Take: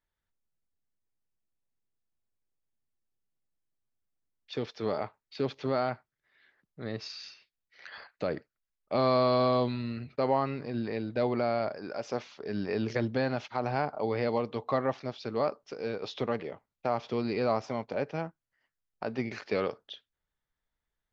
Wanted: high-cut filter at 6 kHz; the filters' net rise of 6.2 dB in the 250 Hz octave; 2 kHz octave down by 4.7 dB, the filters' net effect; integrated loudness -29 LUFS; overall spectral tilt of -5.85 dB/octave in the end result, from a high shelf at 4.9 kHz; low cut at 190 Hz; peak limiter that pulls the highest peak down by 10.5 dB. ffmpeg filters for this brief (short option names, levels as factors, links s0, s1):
-af "highpass=190,lowpass=6000,equalizer=f=250:t=o:g=8.5,equalizer=f=2000:t=o:g=-5.5,highshelf=f=4900:g=-4.5,volume=1.78,alimiter=limit=0.126:level=0:latency=1"